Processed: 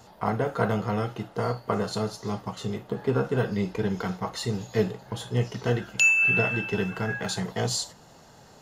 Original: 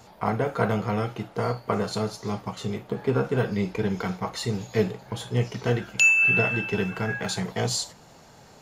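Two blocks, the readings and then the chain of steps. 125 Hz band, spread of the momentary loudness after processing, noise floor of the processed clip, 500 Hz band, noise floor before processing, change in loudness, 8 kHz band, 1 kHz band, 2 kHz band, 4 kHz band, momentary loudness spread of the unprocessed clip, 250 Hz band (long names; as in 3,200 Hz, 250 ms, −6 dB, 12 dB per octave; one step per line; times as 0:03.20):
−1.0 dB, 12 LU, −52 dBFS, −1.0 dB, −51 dBFS, −1.5 dB, −1.0 dB, −1.0 dB, −1.5 dB, −1.0 dB, 12 LU, −1.0 dB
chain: notch filter 2,300 Hz, Q 8.4
level −1 dB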